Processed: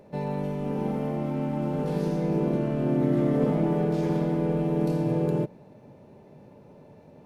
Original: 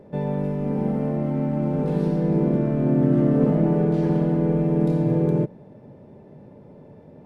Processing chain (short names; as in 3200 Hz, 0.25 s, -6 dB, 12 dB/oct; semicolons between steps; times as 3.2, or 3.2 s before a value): high shelf 2300 Hz +10.5 dB; formant shift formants +2 st; gain -5 dB